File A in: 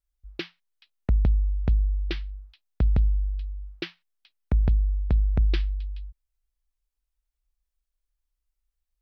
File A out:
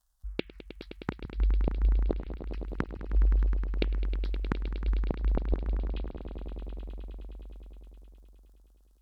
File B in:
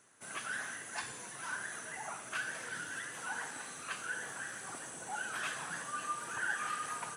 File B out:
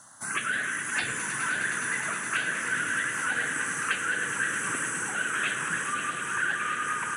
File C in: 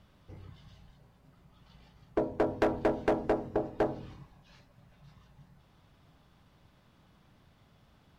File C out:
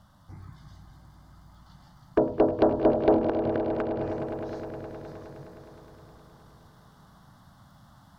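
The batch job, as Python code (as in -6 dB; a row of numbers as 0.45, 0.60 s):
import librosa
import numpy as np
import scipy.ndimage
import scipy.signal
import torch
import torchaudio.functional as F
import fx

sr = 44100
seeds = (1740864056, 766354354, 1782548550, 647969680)

y = fx.env_lowpass_down(x, sr, base_hz=1100.0, full_db=-24.0)
y = fx.low_shelf(y, sr, hz=79.0, db=-7.5)
y = fx.rider(y, sr, range_db=4, speed_s=0.5)
y = fx.gate_flip(y, sr, shuts_db=-20.0, range_db=-29)
y = fx.dmg_crackle(y, sr, seeds[0], per_s=73.0, level_db=-65.0)
y = fx.env_phaser(y, sr, low_hz=400.0, high_hz=2300.0, full_db=-29.5)
y = fx.echo_swell(y, sr, ms=104, loudest=5, wet_db=-13.0)
y = y * 10.0 ** (-30 / 20.0) / np.sqrt(np.mean(np.square(y)))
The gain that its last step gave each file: +7.5, +13.0, +9.0 dB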